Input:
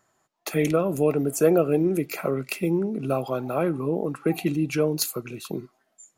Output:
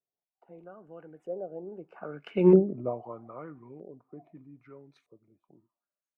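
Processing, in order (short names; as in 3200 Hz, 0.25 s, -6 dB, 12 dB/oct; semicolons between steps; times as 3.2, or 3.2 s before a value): Doppler pass-by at 2.52, 34 m/s, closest 2.8 m; LFO low-pass saw up 0.79 Hz 500–2200 Hz; upward expander 1.5:1, over -35 dBFS; gain +7 dB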